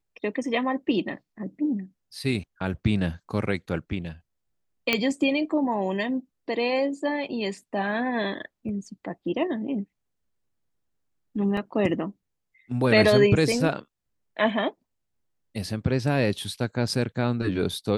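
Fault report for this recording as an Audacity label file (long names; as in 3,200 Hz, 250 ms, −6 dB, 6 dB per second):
4.930000	4.930000	click −7 dBFS
11.570000	11.570000	drop-out 3.2 ms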